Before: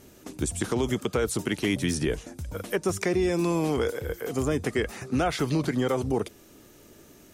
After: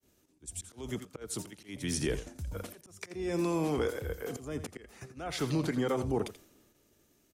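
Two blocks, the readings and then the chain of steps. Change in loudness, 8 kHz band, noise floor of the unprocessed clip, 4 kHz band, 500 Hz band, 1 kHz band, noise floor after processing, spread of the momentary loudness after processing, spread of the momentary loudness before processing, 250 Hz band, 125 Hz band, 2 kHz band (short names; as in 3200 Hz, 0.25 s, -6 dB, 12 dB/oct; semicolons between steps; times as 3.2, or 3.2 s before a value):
-7.5 dB, -6.0 dB, -53 dBFS, -7.5 dB, -8.0 dB, -8.0 dB, -69 dBFS, 14 LU, 7 LU, -8.0 dB, -7.0 dB, -10.0 dB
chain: expander -47 dBFS; auto swell 0.319 s; in parallel at 0 dB: level quantiser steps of 20 dB; on the sum: short-mantissa float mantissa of 8-bit; on a send: echo 85 ms -12 dB; on the sum: three-band expander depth 40%; gain -7 dB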